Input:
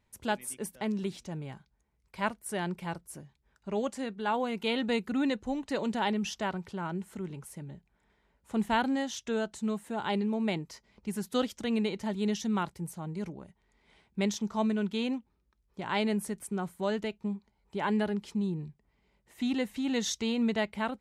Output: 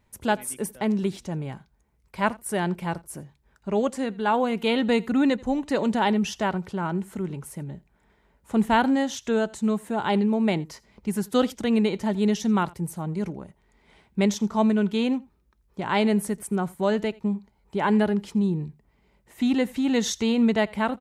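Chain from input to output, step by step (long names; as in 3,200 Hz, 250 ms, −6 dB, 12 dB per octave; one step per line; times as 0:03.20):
parametric band 4,200 Hz −4 dB 2.3 octaves
single-tap delay 84 ms −23.5 dB
level +8 dB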